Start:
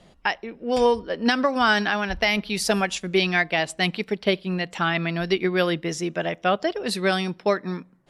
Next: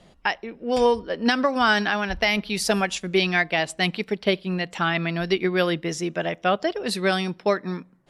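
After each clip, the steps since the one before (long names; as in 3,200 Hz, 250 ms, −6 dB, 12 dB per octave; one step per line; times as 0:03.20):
no processing that can be heard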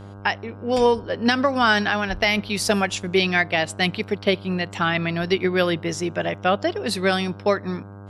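hum with harmonics 100 Hz, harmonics 16, −41 dBFS −6 dB per octave
level +1.5 dB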